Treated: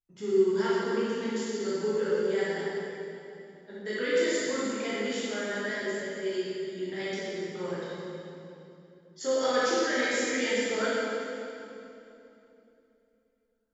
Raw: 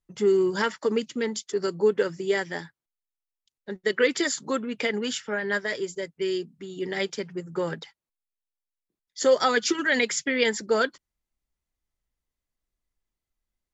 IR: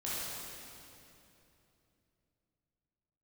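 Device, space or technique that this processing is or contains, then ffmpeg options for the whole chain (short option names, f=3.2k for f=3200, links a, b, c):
stairwell: -filter_complex "[1:a]atrim=start_sample=2205[a];[0:a][a]afir=irnorm=-1:irlink=0,volume=-8.5dB"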